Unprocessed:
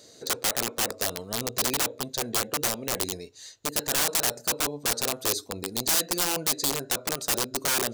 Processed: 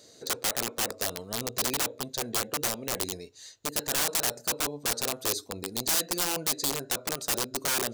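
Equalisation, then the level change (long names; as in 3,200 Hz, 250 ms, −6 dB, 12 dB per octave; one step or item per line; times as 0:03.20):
no EQ move
−2.5 dB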